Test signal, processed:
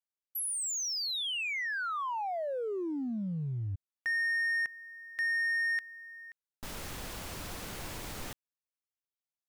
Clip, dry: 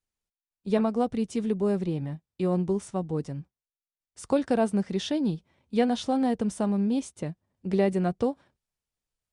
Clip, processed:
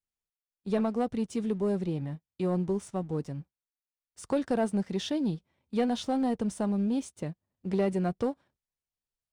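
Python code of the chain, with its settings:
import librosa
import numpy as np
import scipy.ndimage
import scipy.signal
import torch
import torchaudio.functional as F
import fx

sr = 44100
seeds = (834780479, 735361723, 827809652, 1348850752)

y = fx.leveller(x, sr, passes=1)
y = y * 10.0 ** (-6.0 / 20.0)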